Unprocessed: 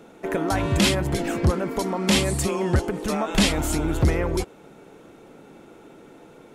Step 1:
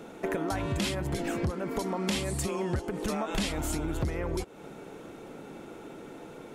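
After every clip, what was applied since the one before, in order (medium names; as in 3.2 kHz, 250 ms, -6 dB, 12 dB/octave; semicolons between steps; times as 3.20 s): compression 6:1, threshold -31 dBFS, peak gain reduction 15.5 dB; trim +2.5 dB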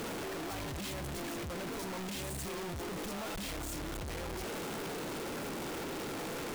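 one-bit comparator; trim -6.5 dB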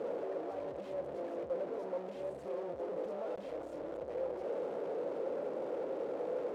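band-pass filter 530 Hz, Q 5.1; trim +10.5 dB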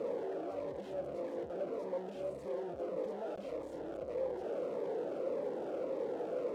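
Shepard-style phaser falling 1.7 Hz; trim +2 dB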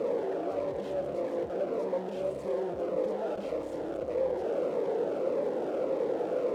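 reverberation RT60 1.3 s, pre-delay 97 ms, DRR 9.5 dB; trim +7 dB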